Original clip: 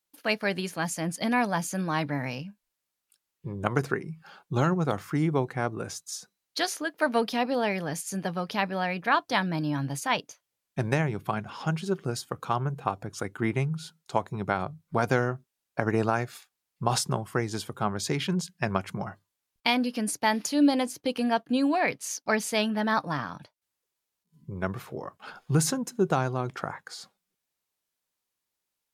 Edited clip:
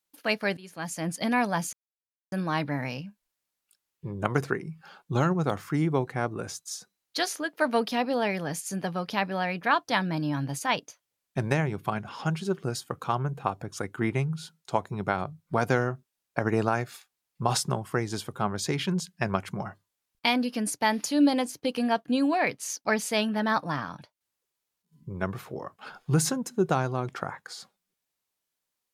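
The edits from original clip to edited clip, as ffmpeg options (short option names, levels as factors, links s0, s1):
-filter_complex "[0:a]asplit=3[s0][s1][s2];[s0]atrim=end=0.57,asetpts=PTS-STARTPTS,afade=t=out:st=0.566:d=0.004:c=hsin:silence=0.0841395[s3];[s1]atrim=start=0.57:end=1.73,asetpts=PTS-STARTPTS,afade=t=in:d=0.51:silence=0.0841395,afade=t=out:st=1.156:d=0.004:c=hsin,apad=pad_dur=0.59[s4];[s2]atrim=start=1.73,asetpts=PTS-STARTPTS,afade=t=in:d=0.004:c=hsin[s5];[s3][s4][s5]concat=n=3:v=0:a=1"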